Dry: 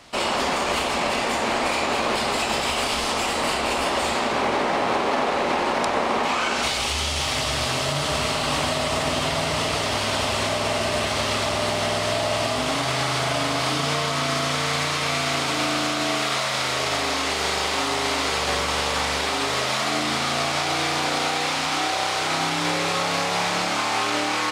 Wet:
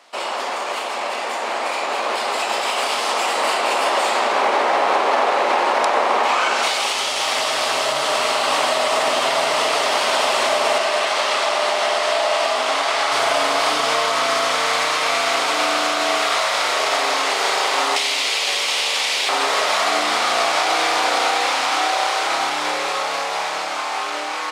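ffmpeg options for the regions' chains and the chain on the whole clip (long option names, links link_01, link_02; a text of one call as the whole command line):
ffmpeg -i in.wav -filter_complex "[0:a]asettb=1/sr,asplit=3[link_01][link_02][link_03];[link_01]atrim=end=10.784[link_04];[link_02]atrim=start=10.78:end=13.12,asetpts=PTS-STARTPTS,afade=type=in:duration=0.004:curve=qsin,afade=type=out:start_time=2.336:duration=0.004:curve=qsin,highpass=frequency=410:poles=1,aeval=exprs='sgn(val(0))*max(abs(val(0))-0.00188,0)':channel_layout=same,highshelf=frequency=12000:gain=-12[link_05];[link_03]atrim=start=13.116[link_06];[link_04][link_05]acrossfade=duration=0.004:curve1=hsin:curve2=qsin[link_07];[link_07][link_06]acrossfade=duration=0.004:curve1=qsin:curve2=hsin,asettb=1/sr,asplit=3[link_08][link_09][link_10];[link_08]atrim=end=17.964[link_11];[link_09]atrim=start=17.96:end=19.29,asetpts=PTS-STARTPTS,afade=type=in:duration=0.004:curve=qsin,afade=type=out:start_time=1.326:duration=0.004:curve=qsin,highshelf=frequency=1900:width_type=q:width=1.5:gain=8.5,acrossover=split=90|2800[link_12][link_13][link_14];[link_12]acompressor=threshold=-44dB:ratio=4[link_15];[link_13]acompressor=threshold=-29dB:ratio=4[link_16];[link_14]acompressor=threshold=-26dB:ratio=4[link_17];[link_15][link_16][link_17]amix=inputs=3:normalize=0[link_18];[link_10]atrim=start=19.286[link_19];[link_11][link_18]acrossfade=duration=0.004:curve1=hsin:curve2=qsin[link_20];[link_20][link_19]acrossfade=duration=0.004:curve1=qsin:curve2=hsin,highpass=470,equalizer=frequency=750:width=0.46:gain=4.5,dynaudnorm=framelen=380:gausssize=13:maxgain=11.5dB,volume=-4dB" out.wav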